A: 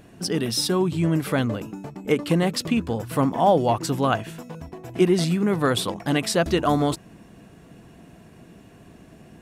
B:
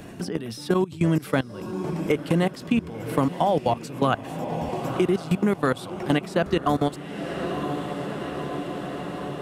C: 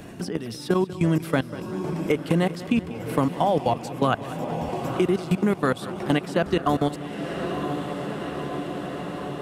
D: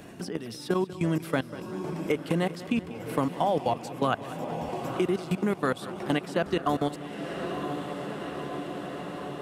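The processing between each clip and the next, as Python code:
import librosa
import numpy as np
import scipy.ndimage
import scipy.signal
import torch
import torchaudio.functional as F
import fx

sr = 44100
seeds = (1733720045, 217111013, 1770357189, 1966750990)

y1 = fx.level_steps(x, sr, step_db=21)
y1 = fx.echo_diffused(y1, sr, ms=992, feedback_pct=57, wet_db=-15.5)
y1 = fx.band_squash(y1, sr, depth_pct=70)
y1 = F.gain(torch.from_numpy(y1), 1.5).numpy()
y2 = fx.echo_feedback(y1, sr, ms=192, feedback_pct=56, wet_db=-16.0)
y3 = fx.low_shelf(y2, sr, hz=150.0, db=-6.0)
y3 = F.gain(torch.from_numpy(y3), -3.5).numpy()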